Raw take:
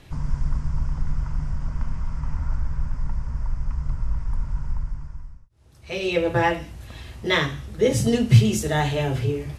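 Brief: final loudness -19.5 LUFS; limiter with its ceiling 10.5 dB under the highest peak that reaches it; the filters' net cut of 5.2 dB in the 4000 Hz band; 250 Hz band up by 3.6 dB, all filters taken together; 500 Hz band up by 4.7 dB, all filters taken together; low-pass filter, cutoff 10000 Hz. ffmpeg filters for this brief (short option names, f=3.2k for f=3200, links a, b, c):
-af "lowpass=10k,equalizer=f=250:t=o:g=3.5,equalizer=f=500:t=o:g=4.5,equalizer=f=4k:t=o:g=-7,volume=6.5dB,alimiter=limit=-6.5dB:level=0:latency=1"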